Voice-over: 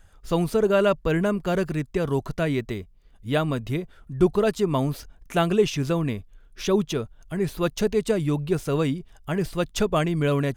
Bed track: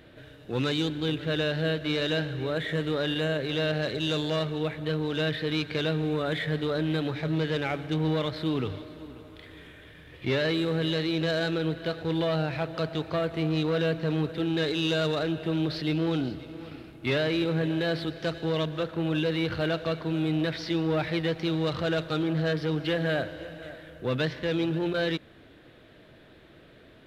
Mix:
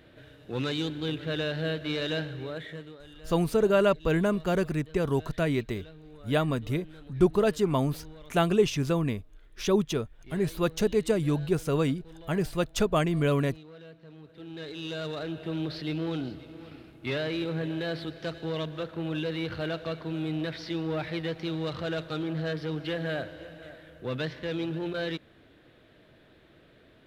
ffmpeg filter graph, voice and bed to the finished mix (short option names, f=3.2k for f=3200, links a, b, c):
-filter_complex "[0:a]adelay=3000,volume=-2.5dB[a];[1:a]volume=14.5dB,afade=t=out:st=2.18:d=0.8:silence=0.112202,afade=t=in:st=14.22:d=1.35:silence=0.133352[b];[a][b]amix=inputs=2:normalize=0"